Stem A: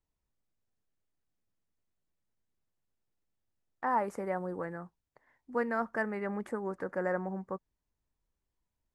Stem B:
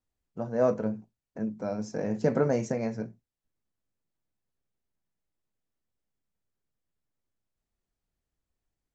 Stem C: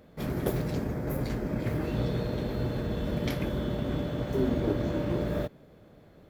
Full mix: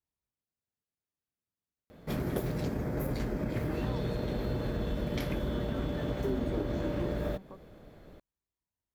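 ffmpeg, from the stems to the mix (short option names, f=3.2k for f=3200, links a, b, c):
-filter_complex "[0:a]acompressor=threshold=-39dB:ratio=6,highpass=56,volume=-7dB[a];[2:a]asubboost=boost=3:cutoff=54,acompressor=threshold=-32dB:ratio=3,adelay=1900,volume=2dB[b];[a][b]amix=inputs=2:normalize=0"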